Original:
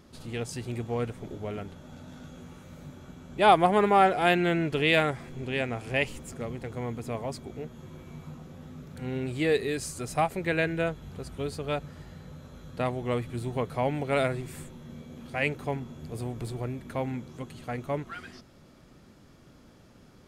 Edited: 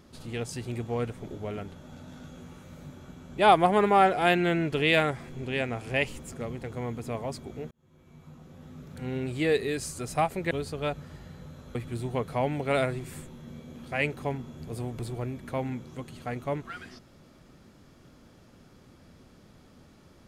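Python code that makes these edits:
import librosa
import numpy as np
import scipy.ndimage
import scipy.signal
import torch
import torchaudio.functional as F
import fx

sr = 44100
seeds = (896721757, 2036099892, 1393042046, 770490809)

y = fx.edit(x, sr, fx.fade_in_span(start_s=7.71, length_s=1.25),
    fx.cut(start_s=10.51, length_s=0.86),
    fx.cut(start_s=12.61, length_s=0.56), tone=tone)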